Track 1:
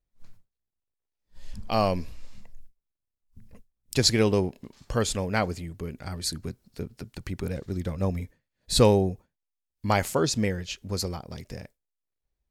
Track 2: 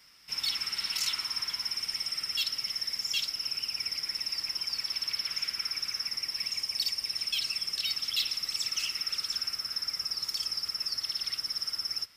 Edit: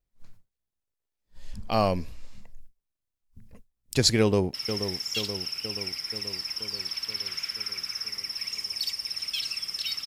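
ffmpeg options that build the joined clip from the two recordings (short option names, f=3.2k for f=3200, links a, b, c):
-filter_complex "[0:a]apad=whole_dur=10.06,atrim=end=10.06,atrim=end=4.542[a];[1:a]atrim=start=2.528:end=8.05[b];[a][b]acrossfade=d=0.004:c1=hsin:c2=hsin,asplit=2[c][d];[d]afade=t=in:st=4.2:d=0.01,afade=t=out:st=4.54:d=0.01,aecho=0:1:480|960|1440|1920|2400|2880|3360|3840|4320:0.354813|0.230629|0.149909|0.0974406|0.0633364|0.0411687|0.0267596|0.0173938|0.0113059[e];[c][e]amix=inputs=2:normalize=0"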